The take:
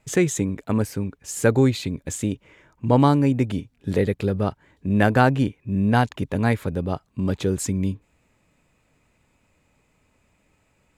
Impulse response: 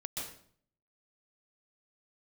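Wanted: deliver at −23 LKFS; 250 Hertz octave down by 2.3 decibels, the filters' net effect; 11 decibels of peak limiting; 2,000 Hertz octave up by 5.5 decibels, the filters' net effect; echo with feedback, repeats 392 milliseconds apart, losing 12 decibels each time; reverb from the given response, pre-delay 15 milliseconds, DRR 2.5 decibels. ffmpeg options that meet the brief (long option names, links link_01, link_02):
-filter_complex "[0:a]equalizer=frequency=250:width_type=o:gain=-3,equalizer=frequency=2000:width_type=o:gain=7.5,alimiter=limit=-13.5dB:level=0:latency=1,aecho=1:1:392|784|1176:0.251|0.0628|0.0157,asplit=2[link_01][link_02];[1:a]atrim=start_sample=2205,adelay=15[link_03];[link_02][link_03]afir=irnorm=-1:irlink=0,volume=-3.5dB[link_04];[link_01][link_04]amix=inputs=2:normalize=0"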